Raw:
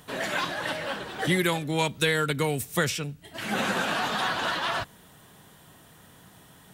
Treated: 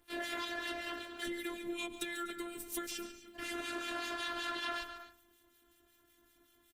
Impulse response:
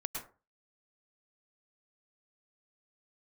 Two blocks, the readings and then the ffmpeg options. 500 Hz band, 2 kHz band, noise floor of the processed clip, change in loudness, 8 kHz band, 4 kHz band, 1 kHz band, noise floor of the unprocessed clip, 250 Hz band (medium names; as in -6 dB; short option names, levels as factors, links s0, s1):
-14.5 dB, -12.5 dB, -70 dBFS, -12.5 dB, -10.5 dB, -11.0 dB, -13.5 dB, -54 dBFS, -11.5 dB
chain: -filter_complex "[0:a]equalizer=f=830:t=o:w=0.85:g=-12.5,acontrast=31,crystalizer=i=1:c=0,aeval=exprs='clip(val(0),-1,0.251)':c=same,agate=range=0.355:threshold=0.0224:ratio=16:detection=peak,highshelf=f=3900:g=-10.5,asplit=2[s0][s1];[s1]adelay=99.13,volume=0.1,highshelf=f=4000:g=-2.23[s2];[s0][s2]amix=inputs=2:normalize=0,acrossover=split=1800[s3][s4];[s3]aeval=exprs='val(0)*(1-0.7/2+0.7/2*cos(2*PI*5.3*n/s))':c=same[s5];[s4]aeval=exprs='val(0)*(1-0.7/2-0.7/2*cos(2*PI*5.3*n/s))':c=same[s6];[s5][s6]amix=inputs=2:normalize=0,acompressor=threshold=0.0316:ratio=12,asplit=2[s7][s8];[1:a]atrim=start_sample=2205,afade=t=out:st=0.23:d=0.01,atrim=end_sample=10584,adelay=143[s9];[s8][s9]afir=irnorm=-1:irlink=0,volume=0.282[s10];[s7][s10]amix=inputs=2:normalize=0,afftfilt=real='hypot(re,im)*cos(PI*b)':imag='0':win_size=512:overlap=0.75,volume=0.841" -ar 48000 -c:a libopus -b:a 20k